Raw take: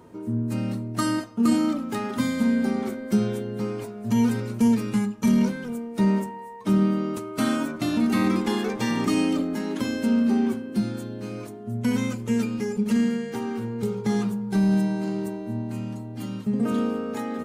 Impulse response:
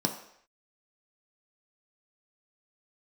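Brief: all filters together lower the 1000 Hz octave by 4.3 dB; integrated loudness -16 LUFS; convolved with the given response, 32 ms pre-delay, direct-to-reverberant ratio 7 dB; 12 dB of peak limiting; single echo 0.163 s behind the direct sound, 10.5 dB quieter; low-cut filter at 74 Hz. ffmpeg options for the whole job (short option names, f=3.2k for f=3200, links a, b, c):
-filter_complex "[0:a]highpass=74,equalizer=f=1k:t=o:g=-5.5,alimiter=limit=-23.5dB:level=0:latency=1,aecho=1:1:163:0.299,asplit=2[a][b];[1:a]atrim=start_sample=2205,adelay=32[c];[b][c]afir=irnorm=-1:irlink=0,volume=-14dB[d];[a][d]amix=inputs=2:normalize=0,volume=11dB"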